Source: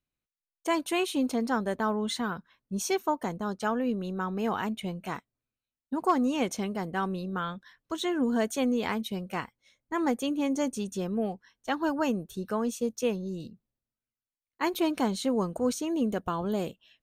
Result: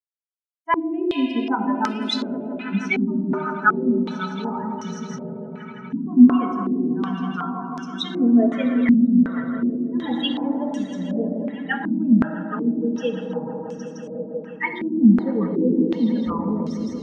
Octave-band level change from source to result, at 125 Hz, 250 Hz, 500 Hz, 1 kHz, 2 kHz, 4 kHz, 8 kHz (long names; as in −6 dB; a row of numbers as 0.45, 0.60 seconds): +8.5 dB, +11.0 dB, +3.0 dB, +4.5 dB, +8.0 dB, +5.5 dB, can't be measured